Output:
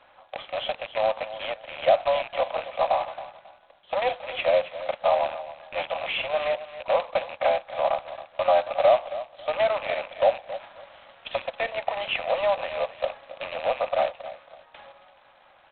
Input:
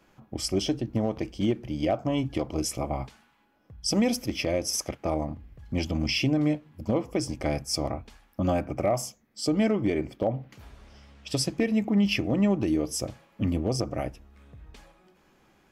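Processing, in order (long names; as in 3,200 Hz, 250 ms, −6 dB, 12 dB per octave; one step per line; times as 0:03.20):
loose part that buzzes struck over −32 dBFS, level −29 dBFS
Butterworth high-pass 530 Hz 96 dB per octave
dynamic equaliser 940 Hz, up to +5 dB, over −46 dBFS, Q 1.3
downward compressor 1.5 to 1, threshold −36 dBFS, peak gain reduction 6.5 dB
tilt shelving filter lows +5.5 dB, about 1,200 Hz
on a send: repeating echo 272 ms, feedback 24%, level −14.5 dB
on the sum: level +8.5 dB
G.726 16 kbit/s 8,000 Hz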